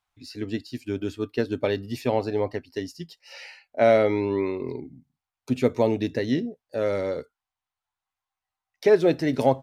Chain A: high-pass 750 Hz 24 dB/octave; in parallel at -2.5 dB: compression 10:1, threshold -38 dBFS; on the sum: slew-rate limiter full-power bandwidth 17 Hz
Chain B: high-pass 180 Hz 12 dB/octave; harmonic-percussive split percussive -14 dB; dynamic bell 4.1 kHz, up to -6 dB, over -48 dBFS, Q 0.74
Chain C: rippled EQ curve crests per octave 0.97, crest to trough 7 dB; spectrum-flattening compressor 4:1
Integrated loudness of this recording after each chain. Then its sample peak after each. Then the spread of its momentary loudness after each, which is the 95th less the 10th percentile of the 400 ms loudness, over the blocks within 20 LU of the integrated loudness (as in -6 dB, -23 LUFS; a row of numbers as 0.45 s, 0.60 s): -40.5 LUFS, -27.0 LUFS, -24.5 LUFS; -23.0 dBFS, -8.5 dBFS, -5.0 dBFS; 11 LU, 20 LU, 7 LU